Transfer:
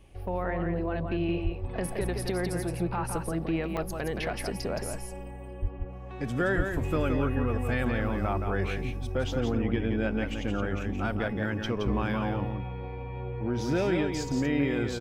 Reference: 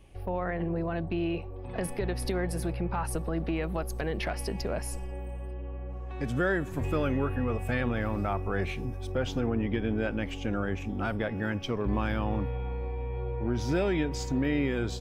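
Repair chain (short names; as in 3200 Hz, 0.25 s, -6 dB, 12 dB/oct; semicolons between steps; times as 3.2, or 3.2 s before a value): 1.43–1.55 HPF 140 Hz 24 dB/oct; 5.61–5.73 HPF 140 Hz 24 dB/oct; 6.56–6.68 HPF 140 Hz 24 dB/oct; interpolate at 3.77, 4.7 ms; inverse comb 0.171 s -5.5 dB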